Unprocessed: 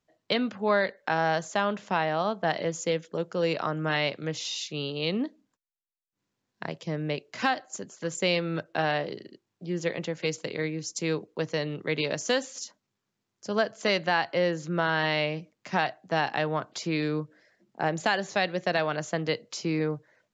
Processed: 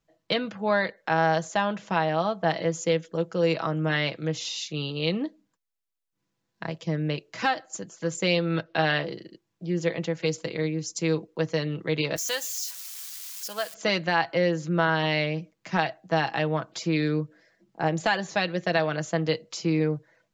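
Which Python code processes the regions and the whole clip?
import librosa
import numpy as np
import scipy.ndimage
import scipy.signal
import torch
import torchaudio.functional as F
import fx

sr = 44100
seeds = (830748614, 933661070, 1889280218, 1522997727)

y = fx.chain(x, sr, fx.lowpass(hz=4600.0, slope=24),
    fx.high_shelf(hz=2100.0, db=8.5), at=(8.5, 9.04))
y = fx.chain(y, sr, fx.crossing_spikes(level_db=-29.0),
    fx.highpass(hz=1500.0, slope=6), at=(12.16, 13.74))
y = fx.low_shelf(y, sr, hz=67.0, db=10.5)
y = y + 0.49 * np.pad(y, (int(6.1 * sr / 1000.0), 0))[:len(y)]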